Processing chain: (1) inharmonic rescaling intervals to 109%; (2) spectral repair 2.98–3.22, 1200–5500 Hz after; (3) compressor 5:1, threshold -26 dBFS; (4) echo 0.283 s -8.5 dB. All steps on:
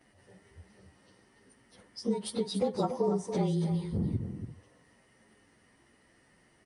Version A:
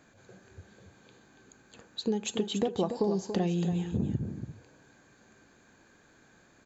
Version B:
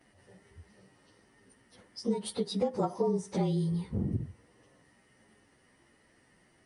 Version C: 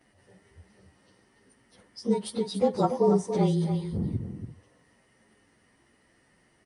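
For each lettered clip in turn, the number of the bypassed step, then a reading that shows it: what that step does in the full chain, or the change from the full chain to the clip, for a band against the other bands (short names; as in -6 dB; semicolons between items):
1, 2 kHz band +6.0 dB; 4, momentary loudness spread change -4 LU; 3, mean gain reduction 2.5 dB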